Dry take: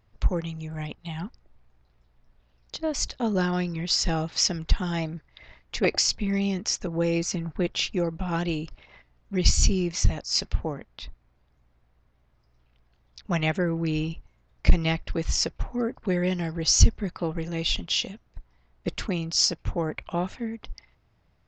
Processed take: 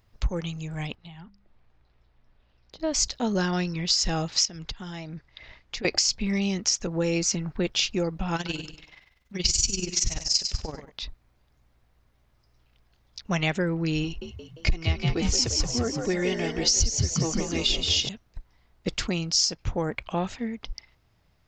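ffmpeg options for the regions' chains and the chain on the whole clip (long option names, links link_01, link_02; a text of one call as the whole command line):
ffmpeg -i in.wav -filter_complex "[0:a]asettb=1/sr,asplit=3[link_01][link_02][link_03];[link_01]atrim=end=0.954[link_04];[link_02]atrim=start=0.95:end=2.8,asetpts=PTS-STARTPTS,afade=type=in:duration=0.004:curve=qsin,afade=type=out:start_time=1.846:duration=0.004:curve=qsin,lowpass=3800,bandreject=frequency=50:width_type=h:width=6,bandreject=frequency=100:width_type=h:width=6,bandreject=frequency=150:width_type=h:width=6,bandreject=frequency=200:width_type=h:width=6,acrossover=split=96|820[link_05][link_06][link_07];[link_05]acompressor=threshold=-56dB:ratio=4[link_08];[link_06]acompressor=threshold=-47dB:ratio=4[link_09];[link_07]acompressor=threshold=-56dB:ratio=4[link_10];[link_08][link_09][link_10]amix=inputs=3:normalize=0[link_11];[link_03]atrim=start=2.796[link_12];[link_04][link_11]acrossfade=duration=0.004:curve1=hsin:curve2=qsin[link_13];[link_13][link_12]acrossfade=duration=0.004:curve1=qsin:curve2=hsin,asettb=1/sr,asplit=3[link_14][link_15][link_16];[link_14]atrim=end=4.454[link_17];[link_15]atrim=start=4.45:end=5.85,asetpts=PTS-STARTPTS,afade=type=in:duration=0.004:curve=qsin,afade=type=out:start_time=1.396:duration=0.004:curve=qsin,lowpass=6600,acompressor=threshold=-33dB:ratio=12:attack=3.2:release=140:knee=1:detection=peak[link_18];[link_16]atrim=start=5.846[link_19];[link_17][link_18]acrossfade=duration=0.004:curve1=hsin:curve2=qsin[link_20];[link_20][link_19]acrossfade=duration=0.004:curve1=qsin:curve2=hsin,asettb=1/sr,asplit=3[link_21][link_22][link_23];[link_21]atrim=end=8.364[link_24];[link_22]atrim=start=8.36:end=10.92,asetpts=PTS-STARTPTS,afade=type=in:duration=0.004:curve=qsin,afade=type=out:start_time=2.556:duration=0.004:curve=qsin,tiltshelf=frequency=1400:gain=-4,tremolo=f=21:d=0.75,aecho=1:1:98|196|294|392:0.355|0.121|0.041|0.0139,atrim=end_sample=112896[link_25];[link_23]atrim=start=10.916[link_26];[link_24][link_25]acrossfade=duration=0.004:curve1=hsin:curve2=qsin[link_27];[link_27][link_26]acrossfade=duration=0.004:curve1=qsin:curve2=hsin,asettb=1/sr,asplit=3[link_28][link_29][link_30];[link_28]atrim=end=14.044[link_31];[link_29]atrim=start=14.04:end=18.09,asetpts=PTS-STARTPTS,afade=type=in:duration=0.004:curve=qsin,afade=type=out:start_time=4.046:duration=0.004:curve=qsin,aecho=1:1:2.8:0.45,atrim=end_sample=178605,asplit=7[link_32][link_33][link_34][link_35][link_36][link_37][link_38];[link_33]adelay=174,afreqshift=56,volume=-6.5dB[link_39];[link_34]adelay=348,afreqshift=112,volume=-12.3dB[link_40];[link_35]adelay=522,afreqshift=168,volume=-18.2dB[link_41];[link_36]adelay=696,afreqshift=224,volume=-24dB[link_42];[link_37]adelay=870,afreqshift=280,volume=-29.9dB[link_43];[link_38]adelay=1044,afreqshift=336,volume=-35.7dB[link_44];[link_32][link_39][link_40][link_41][link_42][link_43][link_44]amix=inputs=7:normalize=0,atrim=end_sample=178605[link_45];[link_30]atrim=start=18.086[link_46];[link_31][link_45]acrossfade=duration=0.004:curve1=hsin:curve2=qsin[link_47];[link_47][link_46]acrossfade=duration=0.004:curve1=qsin:curve2=hsin,highshelf=frequency=3600:gain=9,acompressor=threshold=-20dB:ratio=6" out.wav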